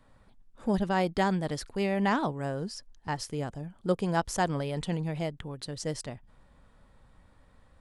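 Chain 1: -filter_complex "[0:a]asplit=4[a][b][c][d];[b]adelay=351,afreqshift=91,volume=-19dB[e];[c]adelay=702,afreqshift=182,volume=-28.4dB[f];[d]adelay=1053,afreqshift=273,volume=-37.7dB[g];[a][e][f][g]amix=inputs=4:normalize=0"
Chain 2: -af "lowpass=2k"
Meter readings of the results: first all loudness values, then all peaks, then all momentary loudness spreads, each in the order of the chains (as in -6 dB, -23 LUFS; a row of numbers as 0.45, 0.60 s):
-31.0, -31.5 LUFS; -13.0, -14.0 dBFS; 12, 13 LU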